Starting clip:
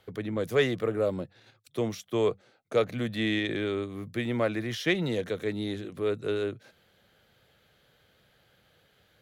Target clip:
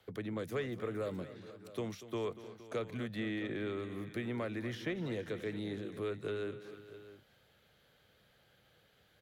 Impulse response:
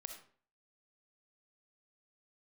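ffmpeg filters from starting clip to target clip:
-filter_complex "[0:a]acrossover=split=92|470|960|2000[link_01][link_02][link_03][link_04][link_05];[link_01]acompressor=threshold=-53dB:ratio=4[link_06];[link_02]acompressor=threshold=-34dB:ratio=4[link_07];[link_03]acompressor=threshold=-45dB:ratio=4[link_08];[link_04]acompressor=threshold=-42dB:ratio=4[link_09];[link_05]acompressor=threshold=-49dB:ratio=4[link_10];[link_06][link_07][link_08][link_09][link_10]amix=inputs=5:normalize=0,aecho=1:1:239|466|658:0.188|0.141|0.158,volume=-4dB"

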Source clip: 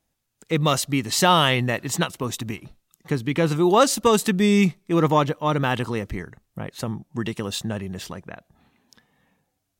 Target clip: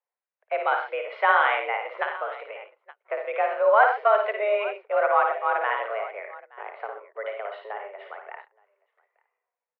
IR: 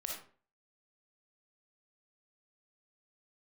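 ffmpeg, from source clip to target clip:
-af "aecho=1:1:56|73|88|93|126|871:0.531|0.178|0.2|0.15|0.237|0.126,agate=range=-11dB:threshold=-38dB:ratio=16:detection=peak,highpass=frequency=310:width_type=q:width=0.5412,highpass=frequency=310:width_type=q:width=1.307,lowpass=frequency=2200:width_type=q:width=0.5176,lowpass=frequency=2200:width_type=q:width=0.7071,lowpass=frequency=2200:width_type=q:width=1.932,afreqshift=210,volume=-2dB"

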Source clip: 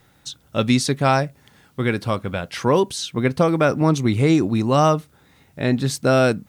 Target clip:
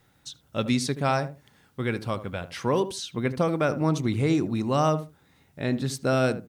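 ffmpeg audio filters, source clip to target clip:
ffmpeg -i in.wav -filter_complex "[0:a]asplit=2[link_01][link_02];[link_02]adelay=77,lowpass=frequency=970:poles=1,volume=-11dB,asplit=2[link_03][link_04];[link_04]adelay=77,lowpass=frequency=970:poles=1,volume=0.18[link_05];[link_01][link_03][link_05]amix=inputs=3:normalize=0,volume=-7dB" out.wav

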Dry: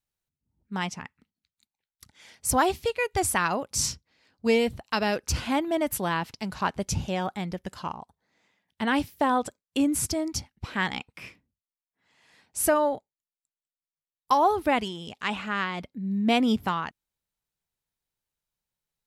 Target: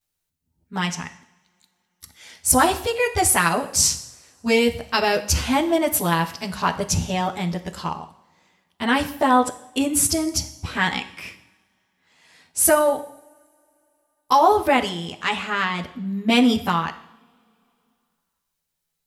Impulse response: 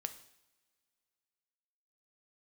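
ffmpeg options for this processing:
-filter_complex "[0:a]asplit=2[link_01][link_02];[1:a]atrim=start_sample=2205,highshelf=frequency=4000:gain=6,adelay=12[link_03];[link_02][link_03]afir=irnorm=-1:irlink=0,volume=7dB[link_04];[link_01][link_04]amix=inputs=2:normalize=0,volume=-1dB"

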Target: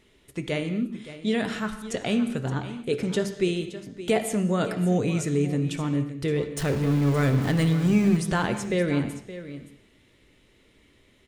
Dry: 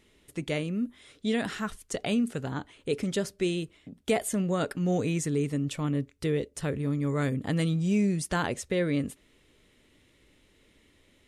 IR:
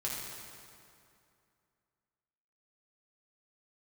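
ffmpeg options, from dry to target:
-filter_complex "[0:a]asettb=1/sr,asplit=3[link_01][link_02][link_03];[link_01]atrim=end=6.574[link_04];[link_02]atrim=start=6.57:end=8.17,asetpts=PTS-STARTPTS,afade=type=in:duration=0.004:curve=qsin,afade=type=out:start_time=1.596:duration=0.004:curve=qsin,aeval=exprs='val(0)+0.5*0.0282*sgn(val(0))':channel_layout=same[link_05];[link_03]atrim=start=8.166[link_06];[link_04][link_05]acrossfade=duration=0.004:curve1=hsin:curve2=qsin[link_07];[link_07][link_06]acrossfade=duration=0.004:curve1=qsin:curve2=hsin,aecho=1:1:570:0.2,asplit=2[link_08][link_09];[1:a]atrim=start_sample=2205,afade=type=out:start_time=0.29:duration=0.01,atrim=end_sample=13230,lowpass=6100[link_10];[link_09][link_10]afir=irnorm=-1:irlink=0,volume=-7dB[link_11];[link_08][link_11]amix=inputs=2:normalize=0"

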